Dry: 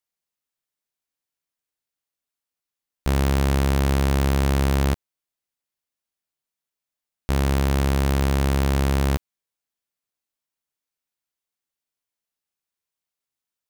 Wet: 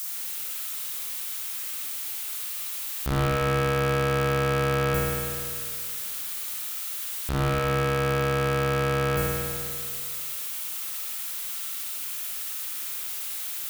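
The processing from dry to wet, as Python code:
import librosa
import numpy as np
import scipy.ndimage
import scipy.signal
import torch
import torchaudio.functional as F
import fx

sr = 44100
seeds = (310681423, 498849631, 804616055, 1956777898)

y = x + 0.5 * 10.0 ** (-21.0 / 20.0) * np.diff(np.sign(x), prepend=np.sign(x[:1]))
y = fx.peak_eq(y, sr, hz=1300.0, db=7.0, octaves=0.25)
y = np.sign(y) * np.maximum(np.abs(y) - 10.0 ** (-38.5 / 20.0), 0.0)
y = fx.rev_spring(y, sr, rt60_s=2.0, pass_ms=(50,), chirp_ms=30, drr_db=-7.0)
y = y * 10.0 ** (-6.0 / 20.0)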